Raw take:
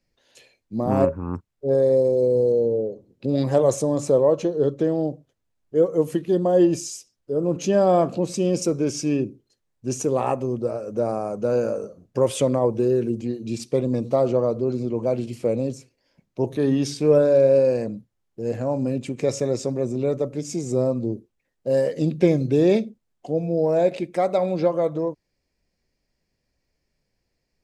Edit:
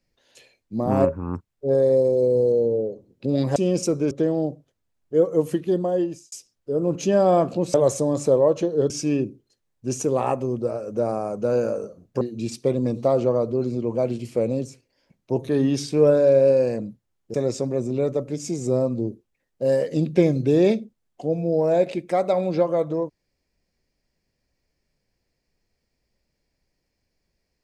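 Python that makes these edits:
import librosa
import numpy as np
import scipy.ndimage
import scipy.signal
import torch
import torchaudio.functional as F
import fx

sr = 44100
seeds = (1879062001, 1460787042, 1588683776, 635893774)

y = fx.edit(x, sr, fx.swap(start_s=3.56, length_s=1.16, other_s=8.35, other_length_s=0.55),
    fx.fade_out_span(start_s=6.25, length_s=0.68),
    fx.cut(start_s=12.21, length_s=1.08),
    fx.cut(start_s=18.42, length_s=0.97), tone=tone)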